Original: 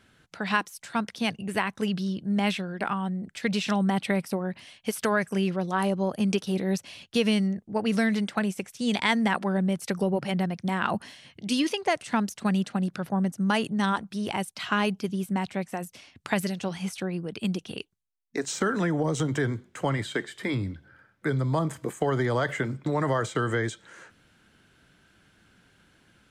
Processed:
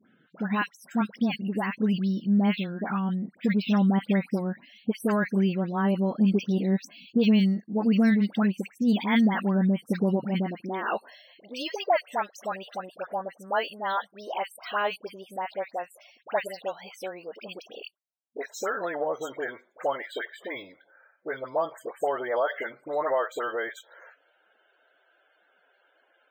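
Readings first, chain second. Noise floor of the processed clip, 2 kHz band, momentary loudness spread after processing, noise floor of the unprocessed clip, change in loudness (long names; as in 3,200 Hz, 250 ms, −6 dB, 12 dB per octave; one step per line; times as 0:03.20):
−67 dBFS, −3.0 dB, 15 LU, −63 dBFS, +0.5 dB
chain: all-pass dispersion highs, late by 76 ms, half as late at 1,300 Hz
high-pass filter sweep 210 Hz → 590 Hz, 0:10.32–0:11.18
spectral peaks only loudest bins 64
linearly interpolated sample-rate reduction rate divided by 2×
level −3 dB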